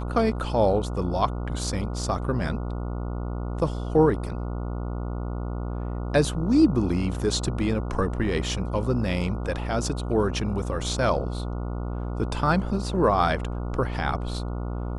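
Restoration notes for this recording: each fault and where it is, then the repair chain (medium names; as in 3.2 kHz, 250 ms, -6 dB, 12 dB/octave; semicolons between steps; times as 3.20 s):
buzz 60 Hz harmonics 24 -30 dBFS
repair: de-hum 60 Hz, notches 24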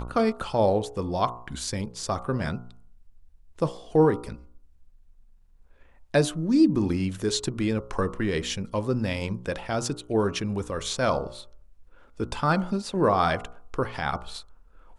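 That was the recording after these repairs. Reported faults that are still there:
nothing left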